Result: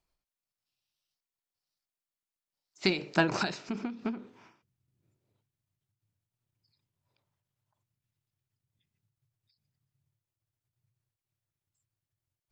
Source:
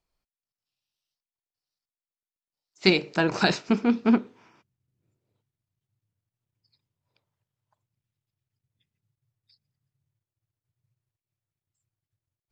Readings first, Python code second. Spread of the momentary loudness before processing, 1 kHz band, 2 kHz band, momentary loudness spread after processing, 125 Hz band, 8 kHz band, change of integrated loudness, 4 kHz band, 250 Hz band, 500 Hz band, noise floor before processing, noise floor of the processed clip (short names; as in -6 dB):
3 LU, -5.0 dB, -5.5 dB, 10 LU, -6.0 dB, n/a, -8.0 dB, -7.5 dB, -10.0 dB, -7.5 dB, under -85 dBFS, under -85 dBFS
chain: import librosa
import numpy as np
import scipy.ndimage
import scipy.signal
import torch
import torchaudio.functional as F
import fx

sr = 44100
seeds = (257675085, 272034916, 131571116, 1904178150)

y = fx.notch(x, sr, hz=470.0, q=14.0)
y = fx.end_taper(y, sr, db_per_s=120.0)